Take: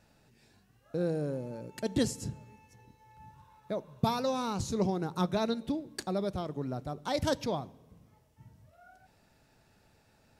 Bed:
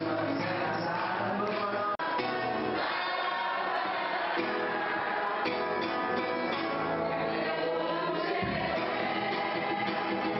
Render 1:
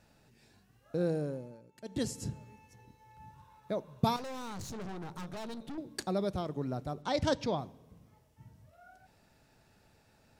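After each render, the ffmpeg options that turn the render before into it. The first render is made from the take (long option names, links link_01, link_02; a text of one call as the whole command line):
ffmpeg -i in.wav -filter_complex "[0:a]asettb=1/sr,asplit=3[link_01][link_02][link_03];[link_01]atrim=end=4.164[link_04];[link_02]atrim=start=4.16:end=5.78,asetpts=PTS-STARTPTS,afade=type=in:duration=0.004:curve=qsin,afade=type=out:start_time=1.616:duration=0.004:curve=qsin,aeval=exprs='(tanh(100*val(0)+0.55)-tanh(0.55))/100':channel_layout=same[link_05];[link_03]atrim=start=5.776[link_06];[link_04][link_05]acrossfade=duration=0.004:curve1=hsin:curve2=qsin[link_07];[link_07][link_06]acrossfade=duration=0.004:curve1=qsin:curve2=hsin,asettb=1/sr,asplit=3[link_08][link_09][link_10];[link_08]atrim=end=7.024[link_11];[link_09]atrim=start=7.02:end=7.59,asetpts=PTS-STARTPTS,afade=type=in:duration=0.004:curve=qsin,afade=type=out:start_time=0.566:duration=0.004:curve=qsin,lowpass=6400[link_12];[link_10]atrim=start=7.586[link_13];[link_11][link_12]acrossfade=duration=0.004:curve1=hsin:curve2=qsin[link_14];[link_14][link_13]acrossfade=duration=0.004:curve1=qsin:curve2=hsin,asplit=3[link_15][link_16][link_17];[link_15]atrim=end=1.62,asetpts=PTS-STARTPTS,afade=type=out:start_time=1.13:duration=0.49:silence=0.177828[link_18];[link_16]atrim=start=1.62:end=1.8,asetpts=PTS-STARTPTS,volume=-15dB[link_19];[link_17]atrim=start=1.8,asetpts=PTS-STARTPTS,afade=type=in:duration=0.49:silence=0.177828[link_20];[link_18][link_19][link_20]concat=n=3:v=0:a=1" out.wav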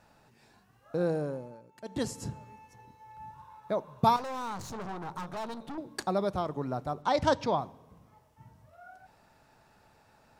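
ffmpeg -i in.wav -af "equalizer=frequency=1000:width=1:gain=9.5,bandreject=frequency=47.99:width_type=h:width=4,bandreject=frequency=95.98:width_type=h:width=4" out.wav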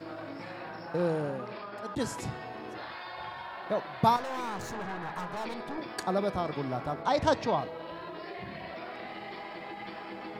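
ffmpeg -i in.wav -i bed.wav -filter_complex "[1:a]volume=-10.5dB[link_01];[0:a][link_01]amix=inputs=2:normalize=0" out.wav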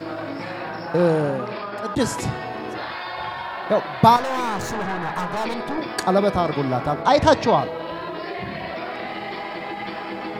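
ffmpeg -i in.wav -af "volume=11dB,alimiter=limit=-3dB:level=0:latency=1" out.wav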